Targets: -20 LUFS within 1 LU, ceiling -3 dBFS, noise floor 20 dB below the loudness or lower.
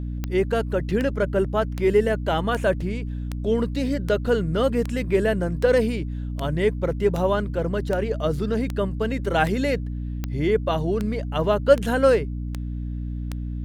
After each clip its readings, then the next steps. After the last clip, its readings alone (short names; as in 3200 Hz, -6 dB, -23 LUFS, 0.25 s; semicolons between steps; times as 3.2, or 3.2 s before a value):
clicks 18; hum 60 Hz; harmonics up to 300 Hz; hum level -26 dBFS; loudness -23.5 LUFS; peak -3.5 dBFS; loudness target -20.0 LUFS
-> de-click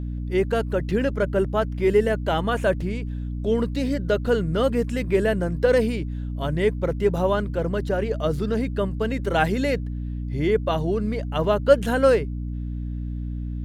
clicks 0; hum 60 Hz; harmonics up to 300 Hz; hum level -26 dBFS
-> de-hum 60 Hz, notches 5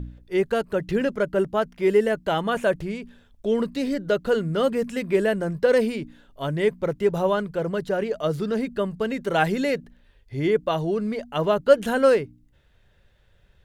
hum none; loudness -24.0 LUFS; peak -3.5 dBFS; loudness target -20.0 LUFS
-> gain +4 dB; limiter -3 dBFS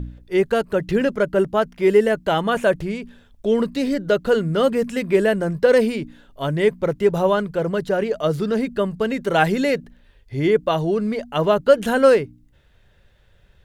loudness -20.0 LUFS; peak -3.0 dBFS; noise floor -55 dBFS